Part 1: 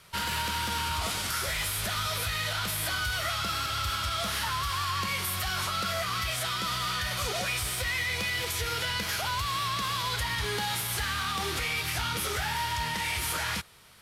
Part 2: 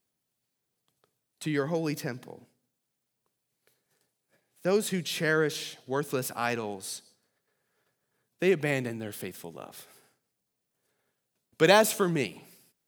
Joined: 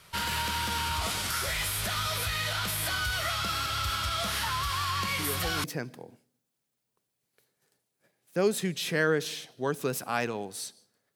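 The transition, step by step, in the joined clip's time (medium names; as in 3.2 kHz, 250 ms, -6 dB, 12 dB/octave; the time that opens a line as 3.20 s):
part 1
5.19 s: add part 2 from 1.48 s 0.45 s -8.5 dB
5.64 s: go over to part 2 from 1.93 s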